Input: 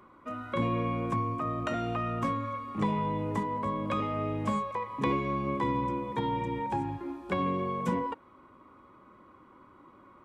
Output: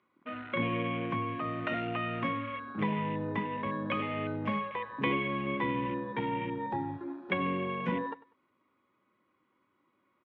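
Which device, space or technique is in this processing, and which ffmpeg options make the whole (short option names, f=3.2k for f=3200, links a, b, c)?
over-cleaned archive recording: -af "highpass=120,lowpass=5.8k,afwtdn=0.00794,lowpass=f=5k:w=0.5412,lowpass=f=5k:w=1.3066,highshelf=f=1.6k:t=q:w=1.5:g=7,aecho=1:1:97|194:0.112|0.0292,volume=-1.5dB"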